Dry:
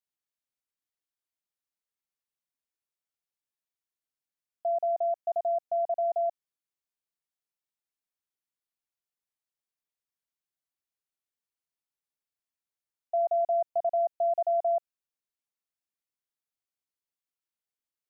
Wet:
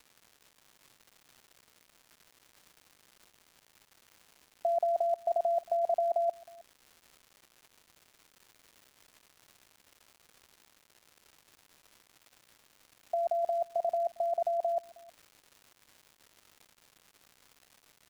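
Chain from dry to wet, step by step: compressor with a negative ratio -30 dBFS; crackle 330 per s -47 dBFS; delay 315 ms -23.5 dB; trim +1.5 dB

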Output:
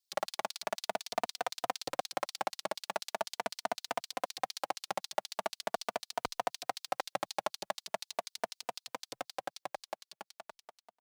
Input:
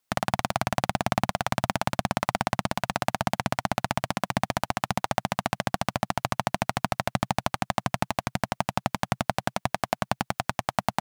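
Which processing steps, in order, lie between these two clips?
fade out at the end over 2.57 s; LFO high-pass square 4 Hz 450–4300 Hz; endless flanger 3.2 ms +0.41 Hz; trim -5.5 dB

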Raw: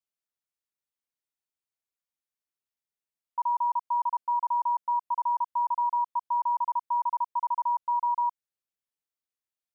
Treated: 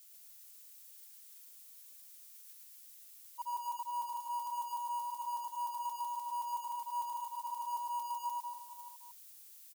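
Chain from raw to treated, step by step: zero-crossing glitches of -29 dBFS; peaking EQ 700 Hz +6.5 dB 0.21 oct; peak limiter -31 dBFS, peak gain reduction 9 dB; gate -32 dBFS, range -36 dB; reverse bouncing-ball echo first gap 110 ms, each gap 1.2×, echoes 5; trim +15.5 dB

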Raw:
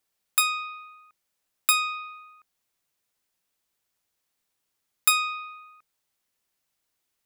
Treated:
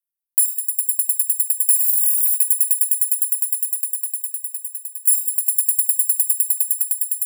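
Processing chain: gate -49 dBFS, range -23 dB; inverse Chebyshev high-pass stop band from 2.6 kHz, stop band 70 dB; echo with a slow build-up 102 ms, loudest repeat 8, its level -11.5 dB; reverberation, pre-delay 3 ms, DRR 8.5 dB; loudness maximiser +19 dB; spectral freeze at 1.80 s, 0.55 s; trim -2 dB

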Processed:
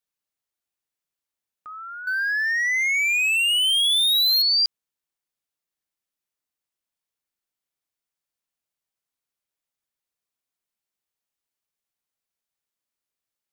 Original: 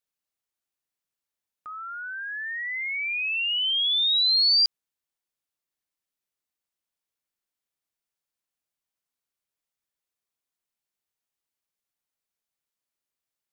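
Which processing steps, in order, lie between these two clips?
2.07–4.42 s: waveshaping leveller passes 3

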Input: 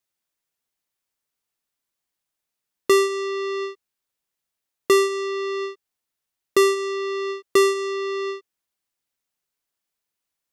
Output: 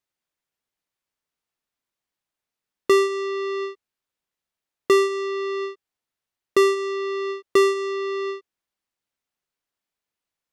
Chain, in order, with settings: treble shelf 5.7 kHz -9 dB

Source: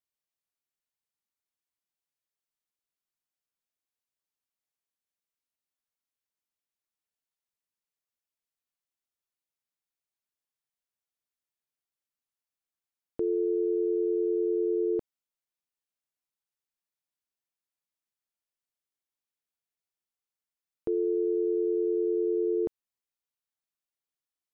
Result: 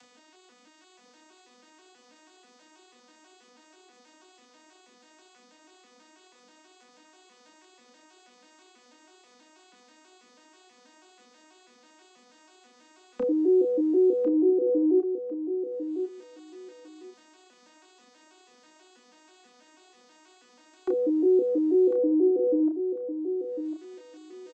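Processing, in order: vocoder on a broken chord major triad, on B3, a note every 162 ms; upward compressor, threshold -31 dBFS; doubling 30 ms -4.5 dB; on a send: feedback delay 1050 ms, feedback 16%, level -8.5 dB; on the sum: trim +5 dB

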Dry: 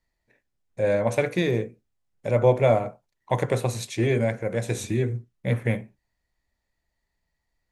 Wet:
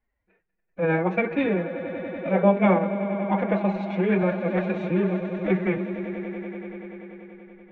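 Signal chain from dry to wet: on a send: echo with a slow build-up 96 ms, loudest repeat 5, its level -15 dB; on the sum: formant-preserving pitch shift +8 st; low-pass 2.6 kHz 24 dB/octave

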